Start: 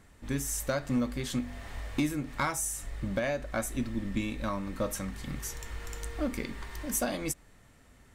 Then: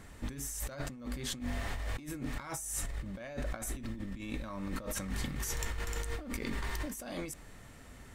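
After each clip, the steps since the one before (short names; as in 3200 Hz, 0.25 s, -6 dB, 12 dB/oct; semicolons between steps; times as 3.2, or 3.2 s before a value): negative-ratio compressor -40 dBFS, ratio -1; gain +1 dB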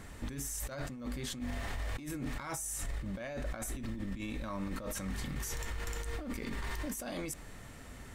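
limiter -32.5 dBFS, peak gain reduction 11 dB; gain +3 dB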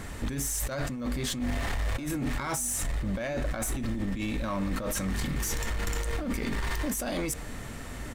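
in parallel at -8 dB: wavefolder -38 dBFS; on the sum: outdoor echo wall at 210 m, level -15 dB; gain +6.5 dB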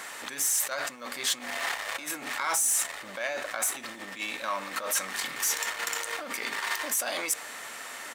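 HPF 840 Hz 12 dB/oct; gain +6 dB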